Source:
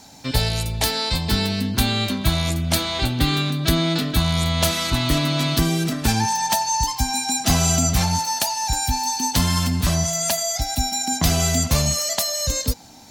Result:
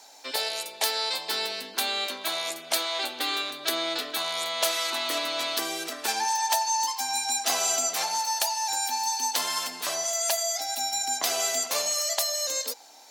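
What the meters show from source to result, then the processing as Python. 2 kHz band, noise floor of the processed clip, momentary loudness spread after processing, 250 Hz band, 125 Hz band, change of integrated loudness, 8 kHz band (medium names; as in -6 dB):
-4.0 dB, -45 dBFS, 5 LU, -21.0 dB, under -40 dB, -6.0 dB, -4.0 dB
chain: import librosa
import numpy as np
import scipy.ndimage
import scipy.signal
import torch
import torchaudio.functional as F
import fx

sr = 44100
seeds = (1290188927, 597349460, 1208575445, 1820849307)

y = scipy.signal.sosfilt(scipy.signal.butter(4, 430.0, 'highpass', fs=sr, output='sos'), x)
y = F.gain(torch.from_numpy(y), -4.0).numpy()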